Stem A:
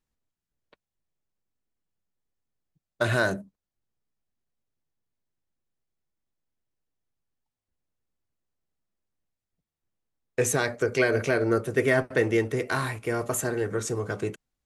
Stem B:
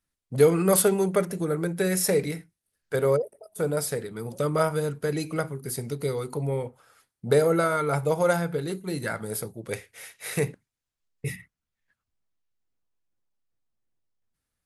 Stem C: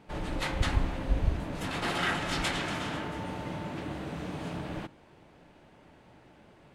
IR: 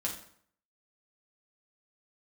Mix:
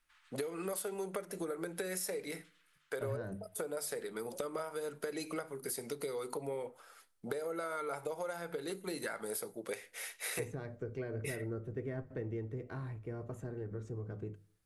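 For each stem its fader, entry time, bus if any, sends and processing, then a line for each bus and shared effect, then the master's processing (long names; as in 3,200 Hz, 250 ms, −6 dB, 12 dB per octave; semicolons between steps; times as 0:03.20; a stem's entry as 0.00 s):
−20.0 dB, 0.00 s, send −19 dB, spectral tilt −4.5 dB per octave
0.0 dB, 0.00 s, send −23.5 dB, high-pass filter 340 Hz 12 dB per octave; downward compressor 10 to 1, threshold −31 dBFS, peak gain reduction 16.5 dB
−17.0 dB, 0.00 s, no send, Butterworth high-pass 1,200 Hz 36 dB per octave; automatic ducking −19 dB, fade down 1.05 s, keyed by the second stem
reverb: on, RT60 0.60 s, pre-delay 5 ms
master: mains-hum notches 50/100/150 Hz; downward compressor 2 to 1, threshold −39 dBFS, peak gain reduction 7 dB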